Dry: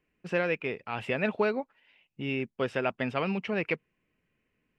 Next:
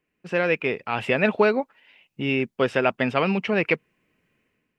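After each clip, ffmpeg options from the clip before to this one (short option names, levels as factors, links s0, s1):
-af "lowshelf=f=64:g=-11,dynaudnorm=f=110:g=7:m=2.66"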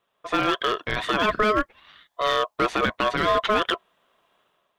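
-af "alimiter=limit=0.188:level=0:latency=1:release=39,aeval=exprs='val(0)*sin(2*PI*850*n/s)':c=same,aeval=exprs='clip(val(0),-1,0.0794)':c=same,volume=2.11"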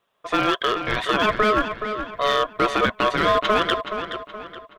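-filter_complex "[0:a]asplit=2[s0][s1];[s1]adelay=423,lowpass=f=4300:p=1,volume=0.376,asplit=2[s2][s3];[s3]adelay=423,lowpass=f=4300:p=1,volume=0.42,asplit=2[s4][s5];[s5]adelay=423,lowpass=f=4300:p=1,volume=0.42,asplit=2[s6][s7];[s7]adelay=423,lowpass=f=4300:p=1,volume=0.42,asplit=2[s8][s9];[s9]adelay=423,lowpass=f=4300:p=1,volume=0.42[s10];[s0][s2][s4][s6][s8][s10]amix=inputs=6:normalize=0,volume=1.26"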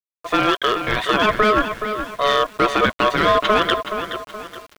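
-af "aeval=exprs='val(0)*gte(abs(val(0)),0.00891)':c=same,volume=1.41"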